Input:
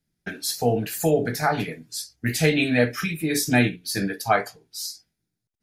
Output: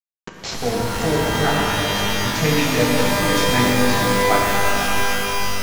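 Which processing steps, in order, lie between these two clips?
send-on-delta sampling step -21 dBFS; resampled via 16 kHz; pitch-shifted reverb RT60 3.9 s, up +12 st, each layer -2 dB, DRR -2 dB; trim -1.5 dB

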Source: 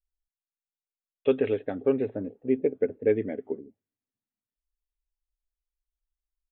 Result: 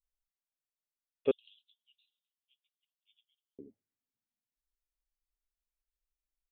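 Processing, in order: 1.31–3.59 s: Chebyshev high-pass 2.9 kHz, order 8; trim -5.5 dB

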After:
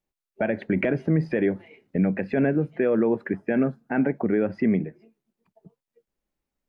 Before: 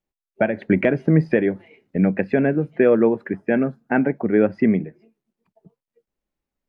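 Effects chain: peak limiter -13.5 dBFS, peak gain reduction 8 dB

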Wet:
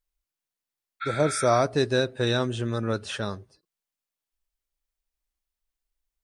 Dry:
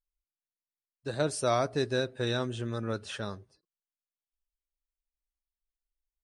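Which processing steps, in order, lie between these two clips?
spectral replace 1.04–1.57 s, 1.3–4.4 kHz after; trim +6 dB

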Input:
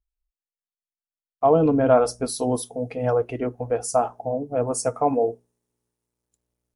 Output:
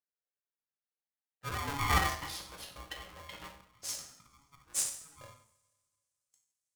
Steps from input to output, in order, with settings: slow attack 299 ms; band-pass sweep 1 kHz -> 7.4 kHz, 0.77–4.42 s; in parallel at -11.5 dB: Schmitt trigger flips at -47 dBFS; on the sum: two-slope reverb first 0.57 s, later 2.2 s, from -27 dB, DRR -1 dB; polarity switched at an audio rate 560 Hz

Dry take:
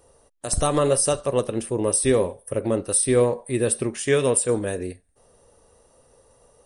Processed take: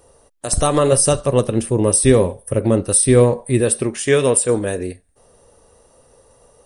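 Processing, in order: 0.92–3.61 s: tone controls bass +7 dB, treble +1 dB; trim +5 dB

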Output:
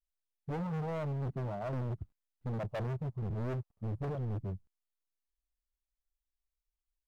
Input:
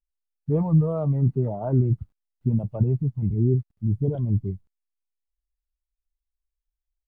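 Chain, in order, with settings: 2.58–4.05 s: high-order bell 750 Hz +10 dB; overload inside the chain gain 28.5 dB; trim -5.5 dB

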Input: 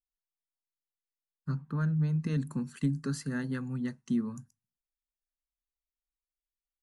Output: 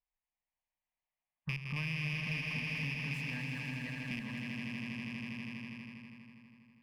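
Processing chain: rattle on loud lows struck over -29 dBFS, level -25 dBFS; peaking EQ 2.4 kHz +8.5 dB 2.7 oct; on a send: echo with a slow build-up 81 ms, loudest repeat 5, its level -8 dB; on the sum: compression 4:1, threshold -37 dBFS, peak gain reduction 13.5 dB; level-controlled noise filter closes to 1.7 kHz, open at -30.5 dBFS; in parallel at -7.5 dB: saturation -36.5 dBFS, distortion -13 dB; on the sum: static phaser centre 1.4 kHz, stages 6; sliding maximum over 3 samples

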